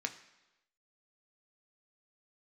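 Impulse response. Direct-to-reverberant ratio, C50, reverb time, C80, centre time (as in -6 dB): 5.5 dB, 13.0 dB, 1.0 s, 15.0 dB, 9 ms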